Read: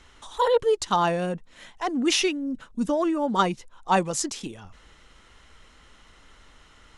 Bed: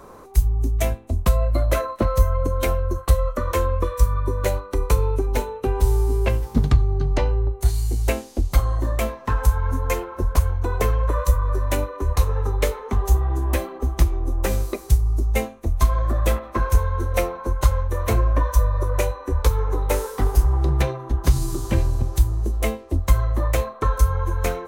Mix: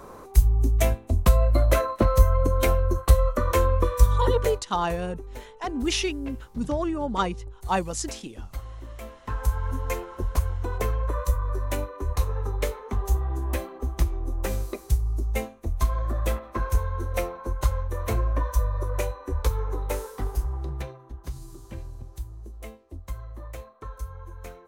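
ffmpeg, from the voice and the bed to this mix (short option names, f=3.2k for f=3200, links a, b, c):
-filter_complex "[0:a]adelay=3800,volume=-3.5dB[a];[1:a]volume=11.5dB,afade=t=out:st=4.31:d=0.31:silence=0.133352,afade=t=in:st=9:d=0.54:silence=0.266073,afade=t=out:st=19.57:d=1.61:silence=0.251189[b];[a][b]amix=inputs=2:normalize=0"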